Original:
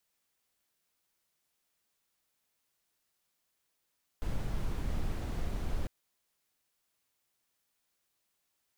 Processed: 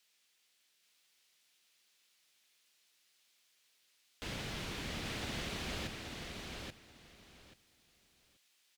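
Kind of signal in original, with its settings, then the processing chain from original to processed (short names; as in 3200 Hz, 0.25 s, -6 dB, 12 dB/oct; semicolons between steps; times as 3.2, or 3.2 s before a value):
noise brown, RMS -32.5 dBFS 1.65 s
weighting filter D; feedback echo 0.833 s, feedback 19%, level -4 dB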